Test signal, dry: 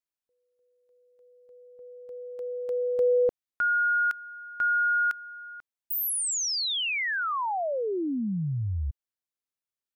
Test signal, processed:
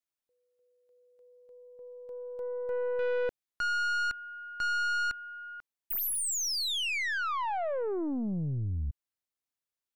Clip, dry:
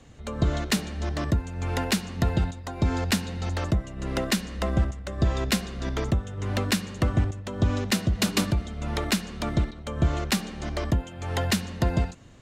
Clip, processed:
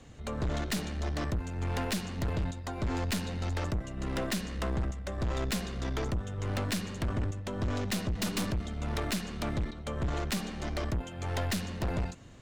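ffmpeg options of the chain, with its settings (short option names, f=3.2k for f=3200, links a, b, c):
-af "aeval=exprs='(tanh(25.1*val(0)+0.35)-tanh(0.35))/25.1':c=same"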